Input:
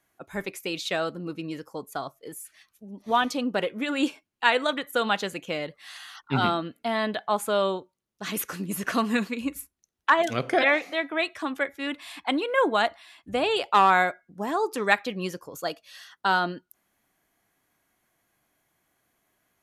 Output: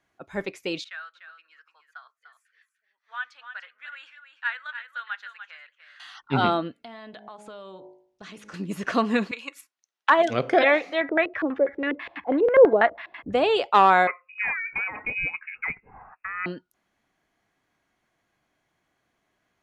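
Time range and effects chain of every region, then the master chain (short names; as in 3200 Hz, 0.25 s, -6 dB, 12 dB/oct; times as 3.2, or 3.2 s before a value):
0.84–6 ladder high-pass 1400 Hz, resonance 65% + high shelf 3100 Hz -11.5 dB + echo 0.296 s -9.5 dB
6.75–8.54 steep low-pass 11000 Hz + de-hum 52.32 Hz, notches 19 + compressor 8:1, threshold -39 dBFS
9.31–10.09 HPF 840 Hz + transient shaper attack +7 dB, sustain +2 dB
11.01–13.33 upward compressor, threshold -28 dBFS + LFO low-pass square 6.1 Hz 480–1800 Hz
14.07–16.46 negative-ratio compressor -29 dBFS + inverted band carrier 2700 Hz
whole clip: dynamic EQ 530 Hz, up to +5 dB, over -35 dBFS, Q 0.92; LPF 5400 Hz 12 dB/oct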